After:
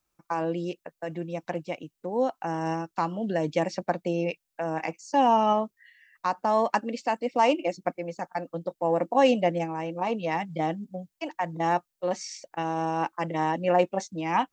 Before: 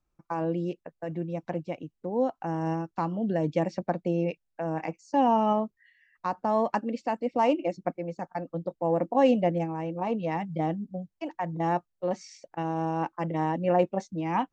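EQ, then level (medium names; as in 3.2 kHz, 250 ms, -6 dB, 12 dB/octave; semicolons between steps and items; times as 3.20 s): tilt EQ +2.5 dB/octave; +3.5 dB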